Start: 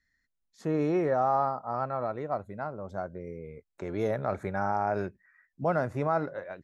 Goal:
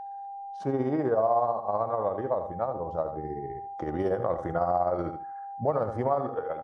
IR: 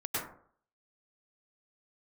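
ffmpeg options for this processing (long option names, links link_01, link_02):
-filter_complex "[0:a]acontrast=24,equalizer=frequency=860:width=1.1:gain=9.5,tremolo=f=16:d=0.51,highshelf=frequency=2500:gain=-4.5,asplit=2[link_01][link_02];[link_02]aecho=0:1:79|158|237:0.316|0.0759|0.0182[link_03];[link_01][link_03]amix=inputs=2:normalize=0,aeval=exprs='val(0)+0.0178*sin(2*PI*920*n/s)':channel_layout=same,asetrate=38170,aresample=44100,atempo=1.15535,acompressor=threshold=-25dB:ratio=2,volume=-1.5dB"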